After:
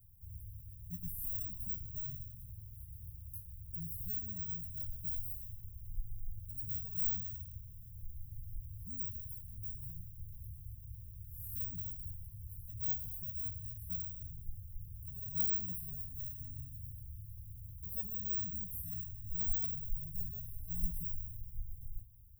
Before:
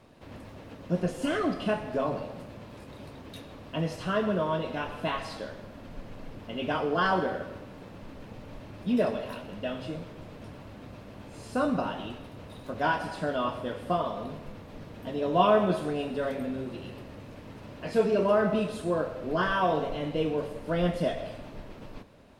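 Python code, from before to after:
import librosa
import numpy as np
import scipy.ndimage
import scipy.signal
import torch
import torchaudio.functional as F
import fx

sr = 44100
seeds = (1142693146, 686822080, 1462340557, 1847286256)

y = np.repeat(x[::2], 2)[:len(x)]
y = scipy.signal.sosfilt(scipy.signal.cheby2(4, 80, [480.0, 2900.0], 'bandstop', fs=sr, output='sos'), y)
y = fx.high_shelf(y, sr, hz=6300.0, db=8.0)
y = y * librosa.db_to_amplitude(4.5)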